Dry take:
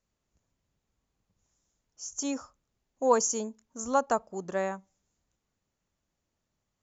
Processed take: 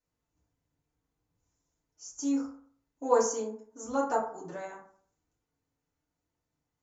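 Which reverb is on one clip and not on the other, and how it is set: FDN reverb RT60 0.53 s, low-frequency decay 0.95×, high-frequency decay 0.45×, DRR -8.5 dB; gain -12 dB

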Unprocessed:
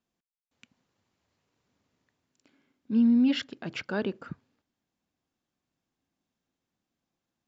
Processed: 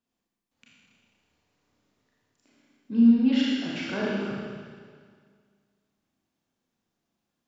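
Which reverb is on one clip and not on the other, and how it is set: Schroeder reverb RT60 1.9 s, combs from 27 ms, DRR -6 dB; gain -3.5 dB

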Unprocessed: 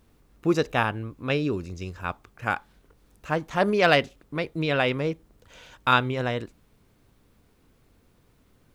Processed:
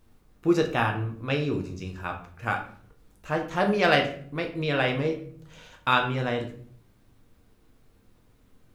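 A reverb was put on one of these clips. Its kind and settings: shoebox room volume 61 m³, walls mixed, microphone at 0.56 m; gain -3 dB

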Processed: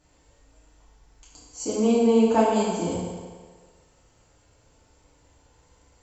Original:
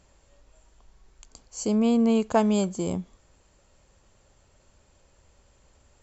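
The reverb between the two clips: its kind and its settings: FDN reverb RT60 1.6 s, low-frequency decay 0.75×, high-frequency decay 0.85×, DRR -9 dB; gain -7 dB

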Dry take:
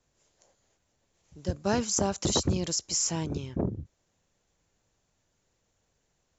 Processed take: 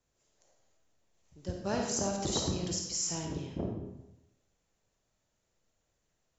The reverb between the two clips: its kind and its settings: digital reverb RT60 0.9 s, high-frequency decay 0.85×, pre-delay 10 ms, DRR 1 dB; gain -7 dB

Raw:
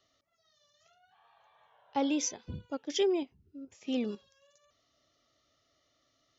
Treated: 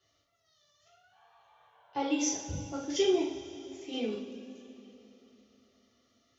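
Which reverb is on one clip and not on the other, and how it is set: two-slope reverb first 0.49 s, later 3.6 s, from -17 dB, DRR -7 dB; gain -6 dB

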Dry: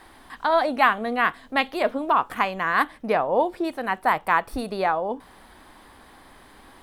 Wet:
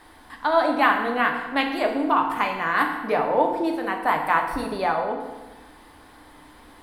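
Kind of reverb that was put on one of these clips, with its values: FDN reverb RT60 1.2 s, low-frequency decay 1.2×, high-frequency decay 0.8×, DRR 1.5 dB; gain -2 dB

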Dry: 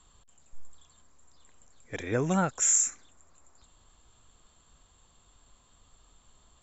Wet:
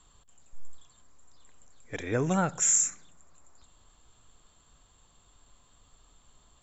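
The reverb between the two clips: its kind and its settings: shoebox room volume 2700 m³, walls furnished, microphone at 0.34 m

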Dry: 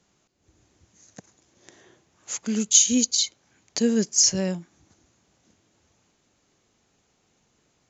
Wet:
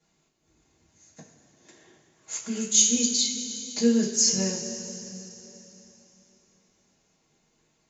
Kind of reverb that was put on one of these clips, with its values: two-slope reverb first 0.23 s, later 3.5 s, from -18 dB, DRR -9.5 dB; gain -11.5 dB

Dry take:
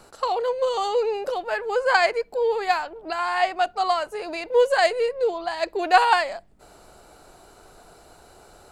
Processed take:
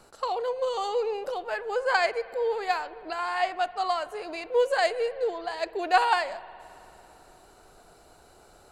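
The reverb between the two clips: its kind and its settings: spring tank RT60 3 s, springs 54 ms, chirp 40 ms, DRR 17.5 dB; gain -5 dB

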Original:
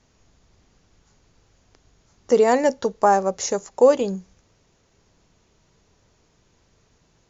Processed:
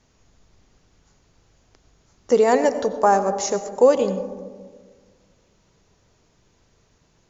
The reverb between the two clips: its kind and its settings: digital reverb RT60 1.6 s, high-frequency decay 0.25×, pre-delay 55 ms, DRR 11 dB

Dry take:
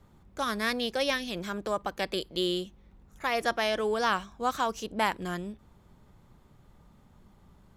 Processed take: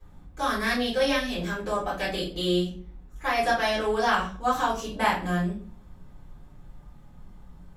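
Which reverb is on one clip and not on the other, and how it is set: shoebox room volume 31 m³, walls mixed, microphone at 2.5 m; gain -9.5 dB

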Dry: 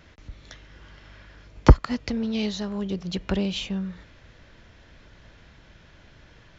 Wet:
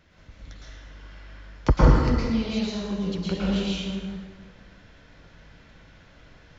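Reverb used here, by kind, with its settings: plate-style reverb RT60 1.5 s, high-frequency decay 0.7×, pre-delay 0.1 s, DRR -7.5 dB; gain -7.5 dB

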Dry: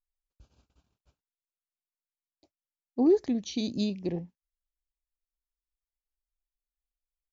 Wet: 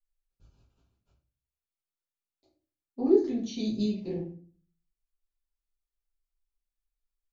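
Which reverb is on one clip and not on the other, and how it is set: shoebox room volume 33 m³, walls mixed, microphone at 1.2 m; gain -10.5 dB

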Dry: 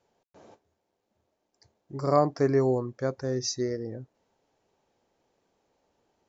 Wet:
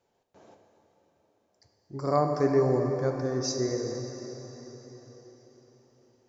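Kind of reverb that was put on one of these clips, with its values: plate-style reverb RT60 4.7 s, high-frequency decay 0.9×, DRR 3 dB; gain -2 dB

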